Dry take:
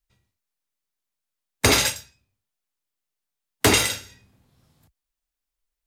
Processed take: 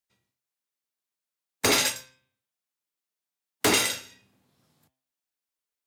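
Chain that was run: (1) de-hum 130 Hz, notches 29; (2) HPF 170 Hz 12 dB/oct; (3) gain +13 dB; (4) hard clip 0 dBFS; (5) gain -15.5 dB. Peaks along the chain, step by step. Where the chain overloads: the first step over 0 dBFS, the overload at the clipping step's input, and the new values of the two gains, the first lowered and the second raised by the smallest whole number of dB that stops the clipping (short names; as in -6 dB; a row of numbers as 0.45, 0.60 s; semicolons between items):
-4.0, -3.5, +9.5, 0.0, -15.5 dBFS; step 3, 9.5 dB; step 3 +3 dB, step 5 -5.5 dB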